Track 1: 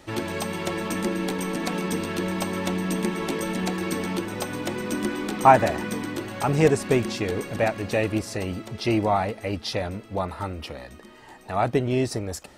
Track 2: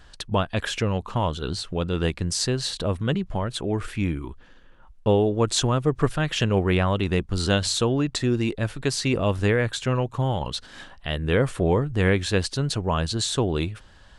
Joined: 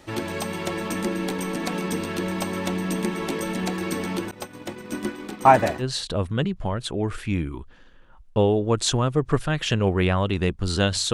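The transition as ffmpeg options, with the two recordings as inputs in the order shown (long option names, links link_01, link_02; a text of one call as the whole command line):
ffmpeg -i cue0.wav -i cue1.wav -filter_complex "[0:a]asettb=1/sr,asplit=3[link_01][link_02][link_03];[link_01]atrim=end=4.314[link_04];[link_02]atrim=start=4.31:end=5.84,asetpts=PTS-STARTPTS,afade=type=in:duration=0.004:curve=qsin,afade=type=out:start_time=1.526:duration=0.004:curve=qsin,agate=range=-33dB:threshold=-24dB:ratio=3:release=100:detection=peak[link_05];[link_03]atrim=start=5.836[link_06];[link_04][link_05]acrossfade=duration=0.004:curve1=hsin:curve2=qsin[link_07];[link_07][link_06]acrossfade=duration=0.004:curve1=qsin:curve2=hsin,apad=whole_dur=11.13,atrim=end=11.13,atrim=end=5.84,asetpts=PTS-STARTPTS[link_08];[1:a]atrim=start=2.48:end=7.83,asetpts=PTS-STARTPTS[link_09];[link_08][link_09]acrossfade=duration=0.06:curve1=tri:curve2=tri" out.wav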